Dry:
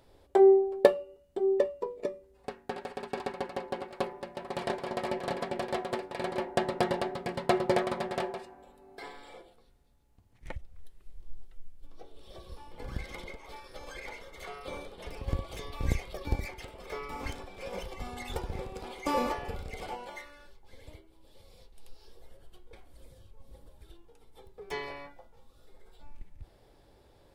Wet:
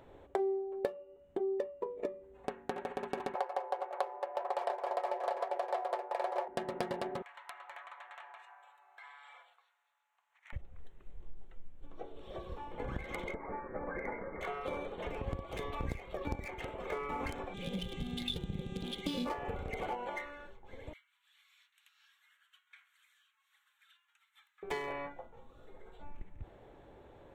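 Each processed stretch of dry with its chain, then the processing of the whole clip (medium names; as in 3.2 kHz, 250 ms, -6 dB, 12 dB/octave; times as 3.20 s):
3.35–6.48 s: high-pass 460 Hz 24 dB/octave + peaking EQ 740 Hz +14.5 dB 1.9 oct
7.22–10.53 s: inverse Chebyshev high-pass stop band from 290 Hz, stop band 60 dB + compression 3:1, threshold -56 dBFS
13.34–14.41 s: steep low-pass 2.1 kHz 72 dB/octave + peaking EQ 210 Hz +9 dB 1.3 oct
17.53–19.25 s: FFT filter 100 Hz 0 dB, 170 Hz +12 dB, 270 Hz +1 dB, 500 Hz -10 dB, 1 kHz -22 dB, 2.1 kHz -11 dB, 3.5 kHz +12 dB, 6.3 kHz -8 dB, 9.9 kHz -2 dB + mains buzz 400 Hz, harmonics 25, -57 dBFS -2 dB/octave
20.93–24.63 s: steep high-pass 1.4 kHz + treble shelf 9.9 kHz +4.5 dB
whole clip: local Wiener filter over 9 samples; bass shelf 98 Hz -8 dB; compression 5:1, threshold -41 dBFS; trim +6.5 dB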